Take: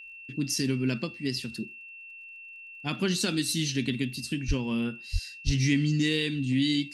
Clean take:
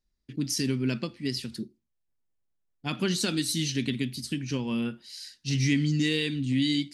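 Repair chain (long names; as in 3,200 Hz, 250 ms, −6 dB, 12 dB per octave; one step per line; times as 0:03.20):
click removal
notch filter 2,700 Hz, Q 30
high-pass at the plosives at 0:04.47/0:05.12/0:05.45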